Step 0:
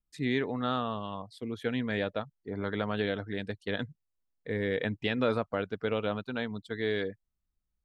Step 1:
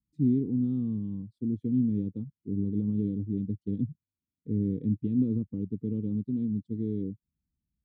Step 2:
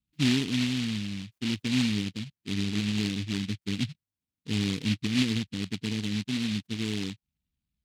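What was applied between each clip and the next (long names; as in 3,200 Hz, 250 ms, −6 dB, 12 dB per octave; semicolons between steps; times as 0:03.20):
high-pass filter 85 Hz; in parallel at +2 dB: brickwall limiter −21.5 dBFS, peak gain reduction 7.5 dB; on the sum: inverse Chebyshev low-pass filter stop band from 590 Hz, stop band 40 dB; level +2 dB
short delay modulated by noise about 3,000 Hz, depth 0.27 ms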